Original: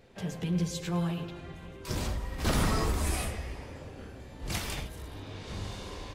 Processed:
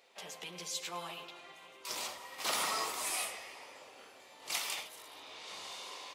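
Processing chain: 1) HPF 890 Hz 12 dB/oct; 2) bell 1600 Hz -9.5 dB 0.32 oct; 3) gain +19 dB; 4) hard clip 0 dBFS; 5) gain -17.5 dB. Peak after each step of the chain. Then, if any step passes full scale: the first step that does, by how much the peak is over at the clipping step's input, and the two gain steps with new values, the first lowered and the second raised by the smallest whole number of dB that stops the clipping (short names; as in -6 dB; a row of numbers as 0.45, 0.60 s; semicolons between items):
-20.0, -22.0, -3.0, -3.0, -20.5 dBFS; no overload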